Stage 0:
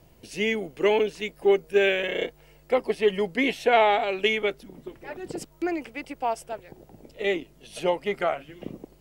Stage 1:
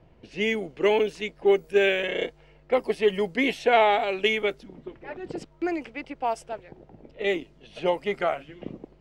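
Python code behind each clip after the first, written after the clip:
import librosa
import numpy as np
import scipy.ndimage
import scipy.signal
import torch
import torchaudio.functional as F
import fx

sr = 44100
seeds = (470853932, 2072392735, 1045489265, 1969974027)

y = fx.env_lowpass(x, sr, base_hz=2400.0, full_db=-20.5)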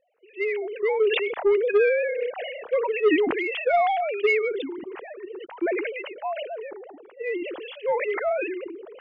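y = fx.sine_speech(x, sr)
y = 10.0 ** (-13.5 / 20.0) * np.tanh(y / 10.0 ** (-13.5 / 20.0))
y = fx.sustainer(y, sr, db_per_s=32.0)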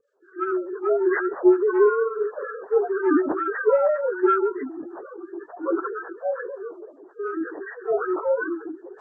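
y = fx.partial_stretch(x, sr, pct=78)
y = fx.harmonic_tremolo(y, sr, hz=5.4, depth_pct=70, crossover_hz=1000.0)
y = y * 10.0 ** (6.0 / 20.0)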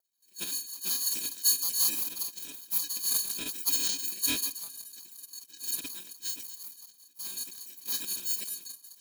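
y = fx.bit_reversed(x, sr, seeds[0], block=256)
y = y * np.sin(2.0 * np.pi * 1100.0 * np.arange(len(y)) / sr)
y = fx.band_shelf(y, sr, hz=1400.0, db=-9.5, octaves=1.2)
y = y * 10.0 ** (-6.5 / 20.0)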